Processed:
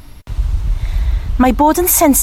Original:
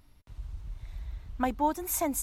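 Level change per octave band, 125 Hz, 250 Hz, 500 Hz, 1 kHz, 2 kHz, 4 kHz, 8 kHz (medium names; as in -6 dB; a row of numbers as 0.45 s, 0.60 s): +23.0 dB, +20.0 dB, +18.5 dB, +16.0 dB, +17.5 dB, +20.0 dB, +19.5 dB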